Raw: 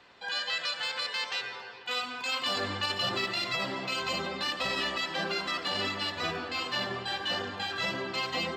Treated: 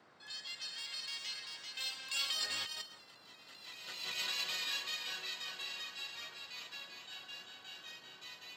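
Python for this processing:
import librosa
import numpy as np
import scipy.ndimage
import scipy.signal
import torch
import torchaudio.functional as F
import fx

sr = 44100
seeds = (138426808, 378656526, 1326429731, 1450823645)

p1 = fx.doppler_pass(x, sr, speed_mps=19, closest_m=2.6, pass_at_s=3.18)
p2 = 10.0 ** (-36.5 / 20.0) * np.tanh(p1 / 10.0 ** (-36.5 / 20.0))
p3 = p1 + (p2 * 10.0 ** (-11.0 / 20.0))
p4 = fx.echo_feedback(p3, sr, ms=391, feedback_pct=39, wet_db=-4.5)
p5 = fx.over_compress(p4, sr, threshold_db=-45.0, ratio=-0.5)
p6 = librosa.effects.preemphasis(p5, coef=0.97, zi=[0.0])
p7 = fx.notch(p6, sr, hz=1300.0, q=13.0)
p8 = fx.dmg_noise_band(p7, sr, seeds[0], low_hz=110.0, high_hz=1700.0, level_db=-78.0)
y = p8 * 10.0 ** (13.0 / 20.0)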